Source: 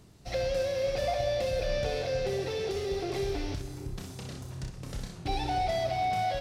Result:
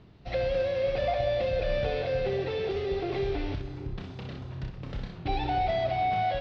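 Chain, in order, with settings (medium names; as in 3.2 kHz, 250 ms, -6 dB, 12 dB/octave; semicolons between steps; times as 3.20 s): low-pass 3.7 kHz 24 dB/octave; trim +2 dB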